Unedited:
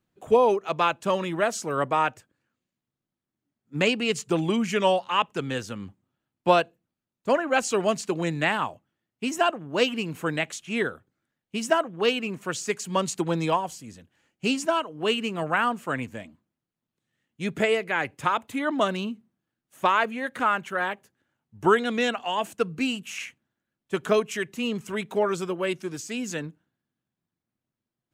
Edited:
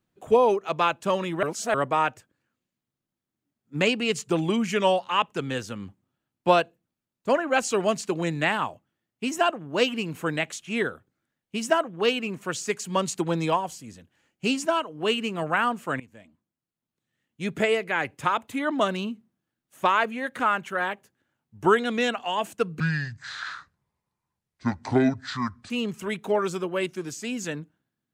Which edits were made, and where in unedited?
1.43–1.74 reverse
16–17.86 fade in equal-power, from -17.5 dB
22.8–24.57 speed 61%

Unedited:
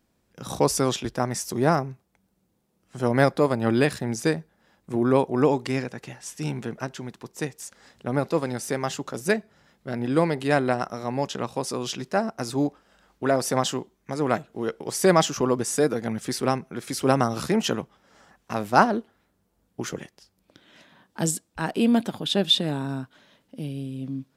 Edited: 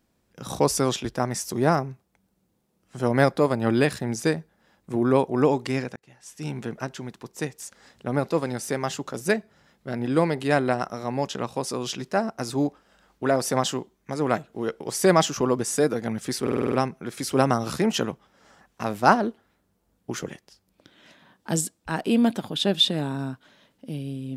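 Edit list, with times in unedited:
5.96–6.66 fade in
16.42 stutter 0.05 s, 7 plays

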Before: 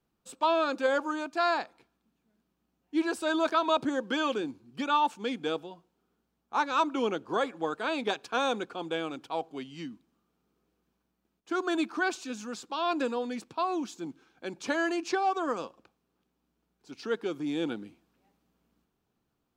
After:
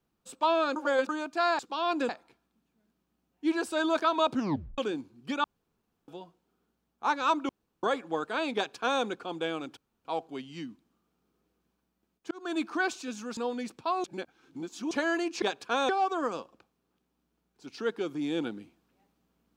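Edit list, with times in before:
0.76–1.09 reverse
3.83 tape stop 0.45 s
4.94–5.58 room tone
6.99–7.33 room tone
8.05–8.52 copy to 15.14
9.27 insert room tone 0.28 s
11.53–11.86 fade in
12.59–13.09 move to 1.59
13.76–14.63 reverse

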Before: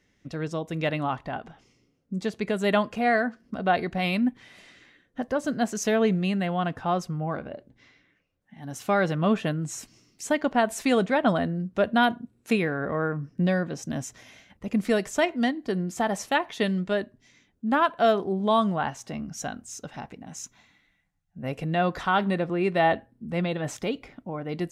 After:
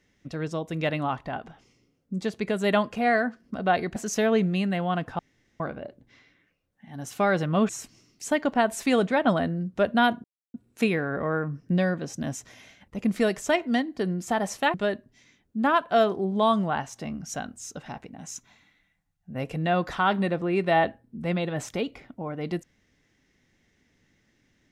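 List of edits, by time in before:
3.96–5.65 cut
6.88–7.29 room tone
9.38–9.68 cut
12.23 insert silence 0.30 s
16.43–16.82 cut

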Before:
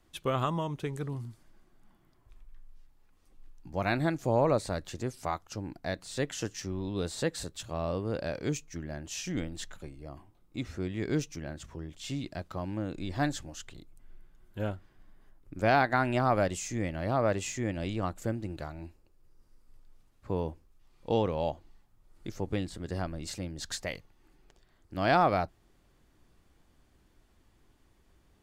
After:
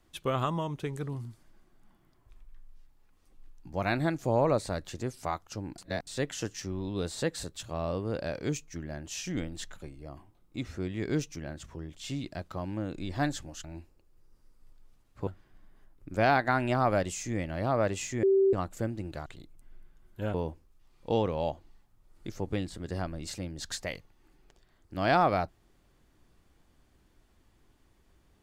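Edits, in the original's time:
5.78–6.07 reverse
13.64–14.72 swap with 18.71–20.34
17.68–17.98 bleep 388 Hz -19.5 dBFS

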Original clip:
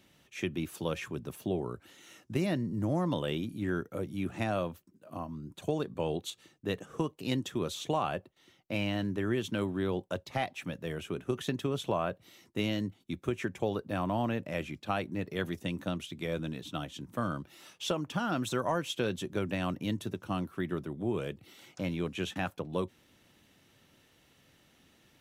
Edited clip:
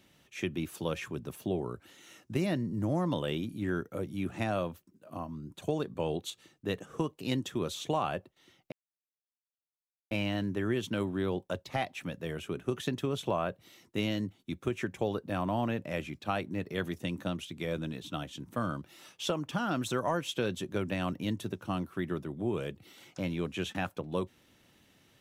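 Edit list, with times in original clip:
8.72 insert silence 1.39 s

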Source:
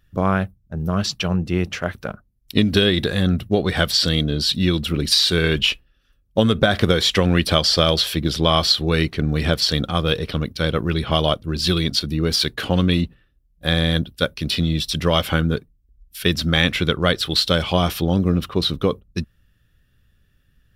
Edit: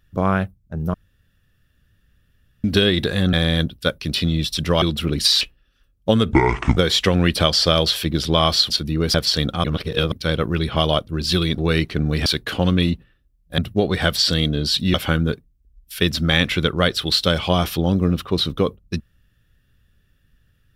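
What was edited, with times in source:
0.94–2.64 room tone
3.33–4.69 swap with 13.69–15.18
5.28–5.7 cut
6.61–6.88 speed 60%
8.81–9.49 swap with 11.93–12.37
9.99–10.47 reverse

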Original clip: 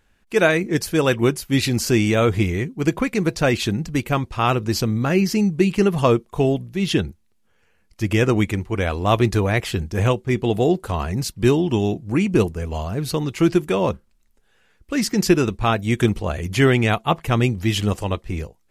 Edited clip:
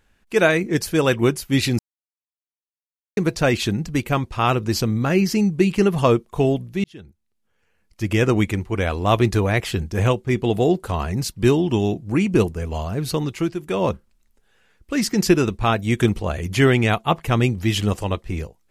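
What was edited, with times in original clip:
1.79–3.17 mute
6.84–8.28 fade in
13.25–13.85 dip -11 dB, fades 0.29 s

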